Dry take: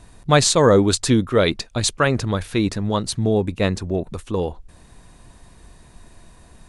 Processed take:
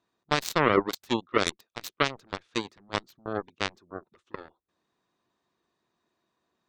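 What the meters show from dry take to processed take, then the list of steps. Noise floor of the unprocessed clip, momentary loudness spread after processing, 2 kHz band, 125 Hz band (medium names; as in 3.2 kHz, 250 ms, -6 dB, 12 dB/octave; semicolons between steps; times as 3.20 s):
-49 dBFS, 20 LU, -5.0 dB, -18.5 dB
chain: cabinet simulation 230–6700 Hz, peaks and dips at 360 Hz +6 dB, 1.2 kHz +7 dB, 3.5 kHz +4 dB; peak limiter -5.5 dBFS, peak gain reduction 7 dB; spectral gate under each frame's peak -30 dB strong; Chebyshev shaper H 3 -9 dB, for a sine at -5 dBFS; trim -2.5 dB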